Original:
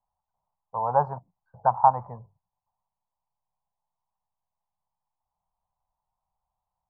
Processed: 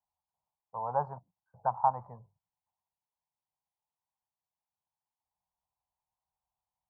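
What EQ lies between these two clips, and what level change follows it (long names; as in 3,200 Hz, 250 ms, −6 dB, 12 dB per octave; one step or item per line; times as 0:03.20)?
high-pass filter 53 Hz
−8.5 dB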